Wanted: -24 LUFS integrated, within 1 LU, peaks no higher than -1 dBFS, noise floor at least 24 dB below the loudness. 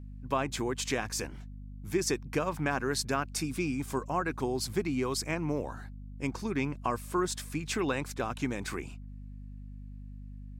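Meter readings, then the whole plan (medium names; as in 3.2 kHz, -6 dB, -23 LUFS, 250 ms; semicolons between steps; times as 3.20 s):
hum 50 Hz; highest harmonic 250 Hz; hum level -42 dBFS; loudness -33.0 LUFS; peak level -15.5 dBFS; loudness target -24.0 LUFS
-> de-hum 50 Hz, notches 5; trim +9 dB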